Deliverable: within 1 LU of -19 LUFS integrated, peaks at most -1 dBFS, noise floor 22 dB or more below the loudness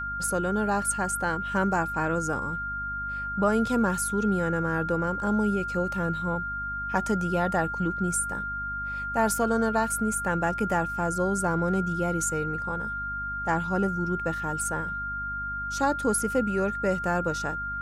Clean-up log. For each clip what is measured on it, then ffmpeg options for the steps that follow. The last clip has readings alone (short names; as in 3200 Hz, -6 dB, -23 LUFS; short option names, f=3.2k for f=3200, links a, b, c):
hum 50 Hz; harmonics up to 250 Hz; hum level -38 dBFS; steady tone 1400 Hz; tone level -30 dBFS; loudness -27.0 LUFS; peak -11.0 dBFS; loudness target -19.0 LUFS
-> -af "bandreject=f=50:t=h:w=4,bandreject=f=100:t=h:w=4,bandreject=f=150:t=h:w=4,bandreject=f=200:t=h:w=4,bandreject=f=250:t=h:w=4"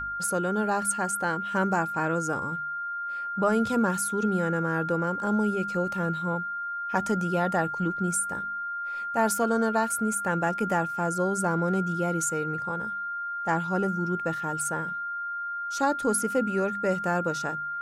hum none; steady tone 1400 Hz; tone level -30 dBFS
-> -af "bandreject=f=1.4k:w=30"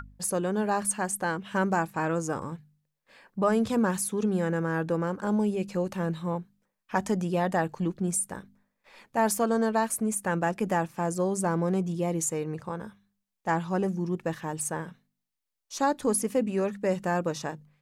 steady tone none; loudness -28.5 LUFS; peak -11.0 dBFS; loudness target -19.0 LUFS
-> -af "volume=9.5dB"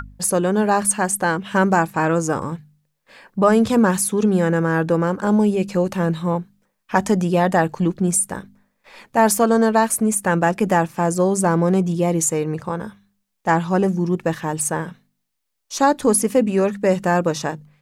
loudness -19.0 LUFS; peak -1.5 dBFS; noise floor -74 dBFS